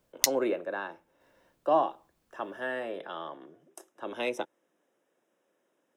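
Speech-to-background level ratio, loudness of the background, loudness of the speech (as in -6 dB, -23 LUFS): -4.0 dB, -29.0 LUFS, -33.0 LUFS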